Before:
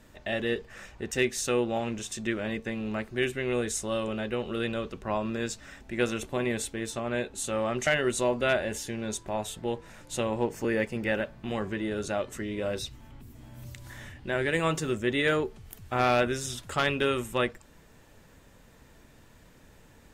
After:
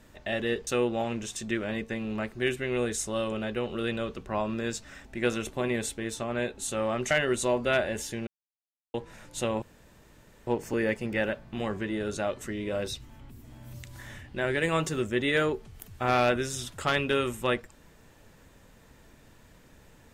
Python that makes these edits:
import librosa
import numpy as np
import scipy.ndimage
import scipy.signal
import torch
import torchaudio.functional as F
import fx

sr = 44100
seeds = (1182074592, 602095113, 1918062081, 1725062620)

y = fx.edit(x, sr, fx.cut(start_s=0.67, length_s=0.76),
    fx.silence(start_s=9.03, length_s=0.67),
    fx.insert_room_tone(at_s=10.38, length_s=0.85), tone=tone)